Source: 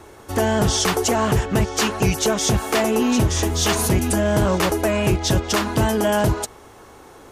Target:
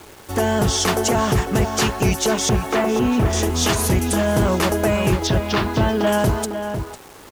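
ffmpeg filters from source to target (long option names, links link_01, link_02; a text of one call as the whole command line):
ffmpeg -i in.wav -filter_complex "[0:a]asettb=1/sr,asplit=3[link_01][link_02][link_03];[link_01]atrim=end=2.494[link_04];[link_02]atrim=start=2.49:end=3.33,asetpts=PTS-STARTPTS,afade=type=in:duration=0.004:curve=qsin,afade=type=out:start_time=0.836:duration=0.004:curve=qsin,acrossover=split=2900[link_05][link_06];[link_06]acompressor=threshold=-42dB:ratio=4:attack=1:release=60[link_07];[link_05][link_07]amix=inputs=2:normalize=0[link_08];[link_03]atrim=start=3.326[link_09];[link_04][link_08]acrossfade=duration=0.004:curve1=hsin:curve2=qsin[link_10];[link_10][link_09]acrossfade=duration=0.004:curve1=qsin:curve2=hsin,asettb=1/sr,asplit=3[link_11][link_12][link_13];[link_11]atrim=end=5.274[link_14];[link_12]atrim=start=5.27:end=6.07,asetpts=PTS-STARTPTS,afade=type=in:duration=0.004:curve=qsin,afade=type=out:start_time=0.796:duration=0.004:curve=qsin,lowpass=frequency=4700:width=0.5412,lowpass=frequency=4700:width=1.3066[link_15];[link_13]atrim=start=6.066[link_16];[link_14][link_15]acrossfade=duration=0.004:curve1=hsin:curve2=qsin[link_17];[link_17][link_16]acrossfade=duration=0.004:curve1=qsin:curve2=hsin,acrusher=bits=6:mix=0:aa=0.000001,asplit=2[link_18][link_19];[link_19]adelay=501.5,volume=-7dB,highshelf=frequency=4000:gain=-11.3[link_20];[link_18][link_20]amix=inputs=2:normalize=0" out.wav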